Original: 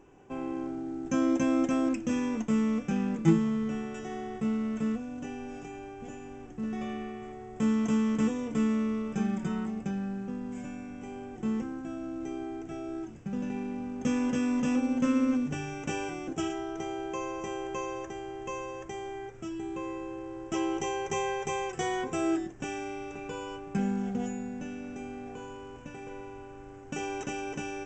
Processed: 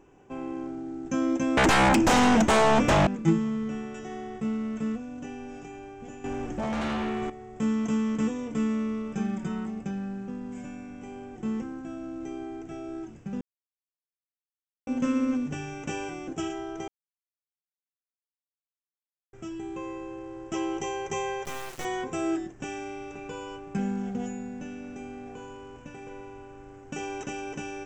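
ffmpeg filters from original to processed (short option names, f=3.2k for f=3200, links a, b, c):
-filter_complex "[0:a]asettb=1/sr,asplit=3[a][b][c];[a]atrim=end=1.574[d];[b]atrim=start=1.57:end=3.07,asetpts=PTS-STARTPTS,afade=t=in:d=0.004:c=qsin,afade=t=out:st=1.496:d=0.004:c=qsin,aeval=exprs='0.15*sin(PI/2*5.62*val(0)/0.15)':c=same[e];[c]atrim=start=3.066[f];[d][e]acrossfade=d=0.004:c1=hsin:c2=qsin[g];[g][f]acrossfade=d=0.004:c1=qsin:c2=hsin,asettb=1/sr,asplit=3[h][i][j];[h]atrim=end=6.244[k];[i]atrim=start=6.24:end=7.3,asetpts=PTS-STARTPTS,afade=t=in:d=0.004:c=qsin,afade=t=out:st=1.056:d=0.004:c=qsin,aeval=exprs='0.0501*sin(PI/2*2.82*val(0)/0.0501)':c=same[l];[j]atrim=start=7.296[m];[k][l]acrossfade=d=0.004:c1=hsin:c2=qsin[n];[n][m]acrossfade=d=0.004:c1=qsin:c2=hsin,asettb=1/sr,asplit=3[o][p][q];[o]atrim=end=21.454[r];[p]atrim=start=21.45:end=21.85,asetpts=PTS-STARTPTS,afade=t=in:d=0.004:c=qsin,afade=t=out:st=0.396:d=0.004:c=qsin,acrusher=bits=4:dc=4:mix=0:aa=0.000001[s];[q]atrim=start=21.846[t];[r][s]acrossfade=d=0.004:c1=hsin:c2=qsin[u];[u][t]acrossfade=d=0.004:c1=qsin:c2=hsin,asplit=5[v][w][x][y][z];[v]atrim=end=13.41,asetpts=PTS-STARTPTS,afade=t=out:st=13.406:d=0.004:c=hsin[aa];[w]atrim=start=13.41:end=14.87,asetpts=PTS-STARTPTS,volume=0[ab];[x]atrim=start=14.87:end=16.88,asetpts=PTS-STARTPTS,afade=t=in:d=0.004:c=hsin,afade=t=out:st=2.006:d=0.004:c=hsin[ac];[y]atrim=start=16.88:end=19.33,asetpts=PTS-STARTPTS,volume=0[ad];[z]atrim=start=19.33,asetpts=PTS-STARTPTS,afade=t=in:d=0.004:c=hsin[ae];[aa][ab][ac][ad][ae]concat=n=5:v=0:a=1"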